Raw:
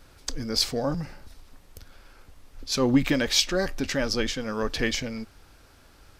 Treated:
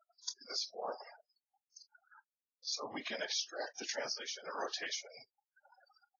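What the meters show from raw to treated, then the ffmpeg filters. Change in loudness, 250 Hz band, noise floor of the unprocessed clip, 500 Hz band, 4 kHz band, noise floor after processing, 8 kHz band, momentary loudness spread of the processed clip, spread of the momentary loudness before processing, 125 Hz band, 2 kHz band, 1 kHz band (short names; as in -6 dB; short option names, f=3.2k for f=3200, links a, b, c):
-14.0 dB, -27.5 dB, -55 dBFS, -15.5 dB, -12.0 dB, under -85 dBFS, -11.0 dB, 19 LU, 15 LU, -36.0 dB, -12.5 dB, -8.5 dB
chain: -af "aecho=1:1:21|46:0.237|0.178,acompressor=mode=upward:threshold=-39dB:ratio=2.5,aderivative,afftfilt=real='re*between(b*sr/4096,190,6800)':imag='im*between(b*sr/4096,190,6800)':win_size=4096:overlap=0.75,flanger=delay=5.1:depth=5.2:regen=-69:speed=0.8:shape=triangular,acompressor=threshold=-52dB:ratio=3,equalizer=f=710:t=o:w=1.5:g=15,afftfilt=real='hypot(re,im)*cos(2*PI*random(0))':imag='hypot(re,im)*sin(2*PI*random(1))':win_size=512:overlap=0.75,afftfilt=real='re*gte(hypot(re,im),0.00141)':imag='im*gte(hypot(re,im),0.00141)':win_size=1024:overlap=0.75,volume=15.5dB" -ar 44100 -c:a libvorbis -b:a 32k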